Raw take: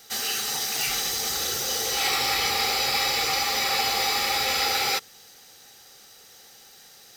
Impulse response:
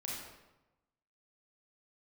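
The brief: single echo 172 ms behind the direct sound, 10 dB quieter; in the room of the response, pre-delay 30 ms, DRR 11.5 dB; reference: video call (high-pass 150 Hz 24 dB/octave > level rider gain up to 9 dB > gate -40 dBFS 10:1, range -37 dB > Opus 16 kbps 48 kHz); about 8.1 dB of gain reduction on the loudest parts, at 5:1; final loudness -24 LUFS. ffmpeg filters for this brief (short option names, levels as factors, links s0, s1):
-filter_complex "[0:a]acompressor=threshold=0.0316:ratio=5,aecho=1:1:172:0.316,asplit=2[s0][s1];[1:a]atrim=start_sample=2205,adelay=30[s2];[s1][s2]afir=irnorm=-1:irlink=0,volume=0.251[s3];[s0][s3]amix=inputs=2:normalize=0,highpass=f=150:w=0.5412,highpass=f=150:w=1.3066,dynaudnorm=m=2.82,agate=range=0.0141:threshold=0.01:ratio=10,volume=2" -ar 48000 -c:a libopus -b:a 16k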